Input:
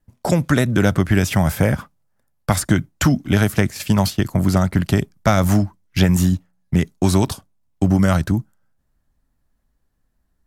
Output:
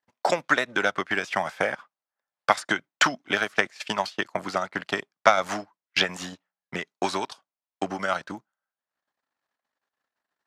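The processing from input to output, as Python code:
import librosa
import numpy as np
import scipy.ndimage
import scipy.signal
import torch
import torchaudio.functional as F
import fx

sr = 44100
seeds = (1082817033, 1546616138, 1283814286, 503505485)

y = fx.transient(x, sr, attack_db=6, sustain_db=-10)
y = fx.bandpass_edges(y, sr, low_hz=760.0, high_hz=4400.0)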